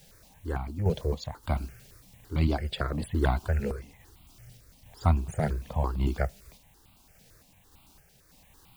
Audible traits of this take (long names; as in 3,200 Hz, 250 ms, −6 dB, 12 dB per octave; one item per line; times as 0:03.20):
a quantiser's noise floor 10 bits, dither triangular
sample-and-hold tremolo
notches that jump at a steady rate 8.9 Hz 300–1,700 Hz